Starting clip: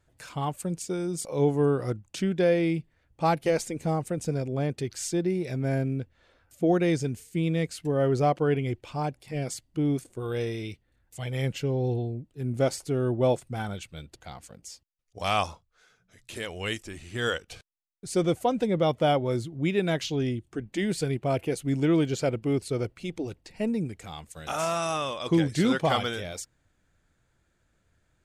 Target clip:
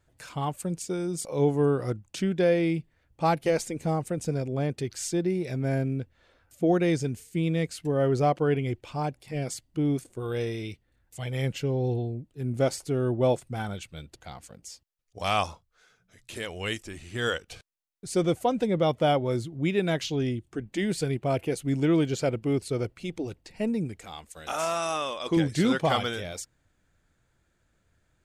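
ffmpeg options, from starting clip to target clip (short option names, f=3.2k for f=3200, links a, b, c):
-filter_complex "[0:a]asettb=1/sr,asplit=3[a][b][c];[a]atrim=end=24.004[d];[b]atrim=start=24:end=25.37,asetpts=PTS-STARTPTS,afade=t=in:d=0.004:c=qsin,afade=t=out:st=1.366:d=0.004:c=qsin,equalizer=f=120:w=1.3:g=-12[e];[c]atrim=start=25.366[f];[d][e]acrossfade=d=0.004:c1=hsin:c2=qsin[g];[g][f]acrossfade=d=0.004:c1=qsin:c2=hsin"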